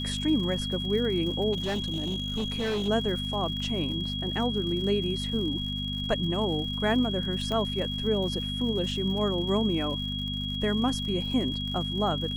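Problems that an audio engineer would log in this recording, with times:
crackle 110/s -37 dBFS
hum 50 Hz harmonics 5 -34 dBFS
tone 3300 Hz -33 dBFS
1.52–2.89 clipped -25.5 dBFS
7.52 pop -19 dBFS

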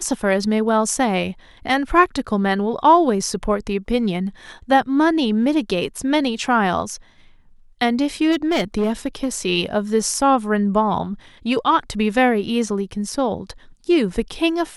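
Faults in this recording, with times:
8.31–9.38 clipped -14.5 dBFS

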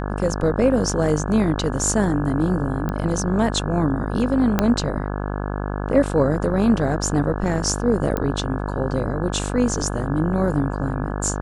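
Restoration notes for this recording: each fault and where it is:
buzz 50 Hz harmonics 34 -26 dBFS
2.89 pop -14 dBFS
4.59 pop -4 dBFS
8.17 pop -11 dBFS

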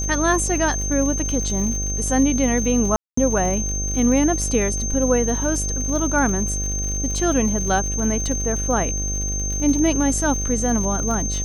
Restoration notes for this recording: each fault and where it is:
buzz 50 Hz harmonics 15 -26 dBFS
crackle 95/s -28 dBFS
tone 6300 Hz -25 dBFS
2.96–3.17 gap 0.214 s

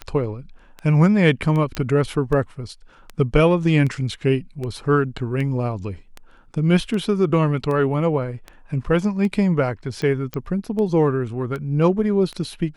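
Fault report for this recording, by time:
tick 78 rpm -18 dBFS
1.75 pop -12 dBFS
10.34 pop -13 dBFS

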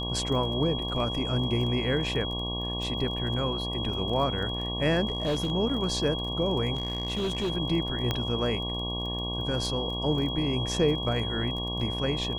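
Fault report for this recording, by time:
buzz 60 Hz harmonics 19 -34 dBFS
crackle 19/s -35 dBFS
tone 3300 Hz -33 dBFS
5.08–5.52 clipped -23 dBFS
6.74–7.5 clipped -25 dBFS
8.11 pop -13 dBFS

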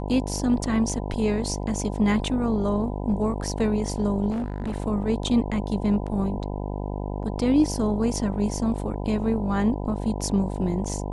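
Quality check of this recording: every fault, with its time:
buzz 50 Hz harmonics 20 -30 dBFS
4.3–4.76 clipped -24.5 dBFS

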